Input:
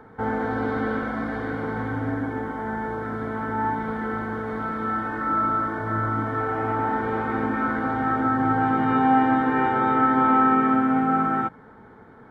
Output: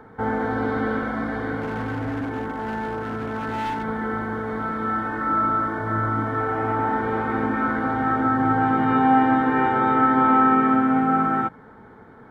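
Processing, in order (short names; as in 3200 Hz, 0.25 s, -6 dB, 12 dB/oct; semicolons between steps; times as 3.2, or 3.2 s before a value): 1.61–3.84 hard clip -25 dBFS, distortion -23 dB; gain +1.5 dB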